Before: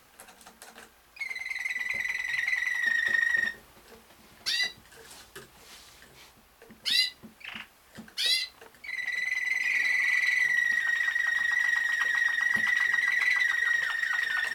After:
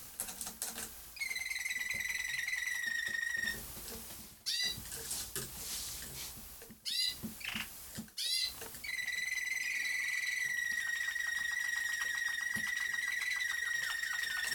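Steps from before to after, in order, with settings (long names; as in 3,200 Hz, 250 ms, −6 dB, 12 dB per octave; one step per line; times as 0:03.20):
bass and treble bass +9 dB, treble +15 dB
reversed playback
downward compressor 5 to 1, threshold −35 dBFS, peak gain reduction 20 dB
reversed playback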